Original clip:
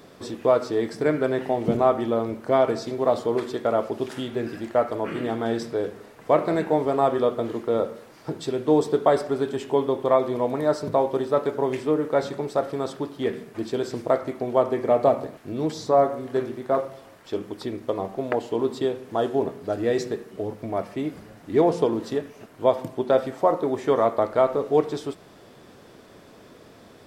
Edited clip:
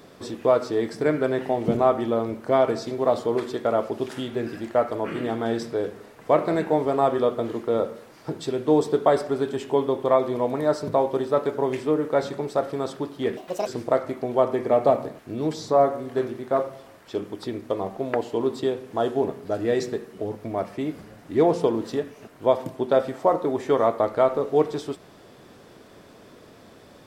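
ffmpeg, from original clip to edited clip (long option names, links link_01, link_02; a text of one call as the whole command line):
ffmpeg -i in.wav -filter_complex "[0:a]asplit=3[link_01][link_02][link_03];[link_01]atrim=end=13.374[link_04];[link_02]atrim=start=13.37:end=13.85,asetpts=PTS-STARTPTS,asetrate=71442,aresample=44100[link_05];[link_03]atrim=start=13.846[link_06];[link_04][link_05]acrossfade=duration=0.004:curve1=hsin:curve2=hsin[link_07];[link_07][link_06]acrossfade=duration=0.004:curve1=hsin:curve2=hsin" out.wav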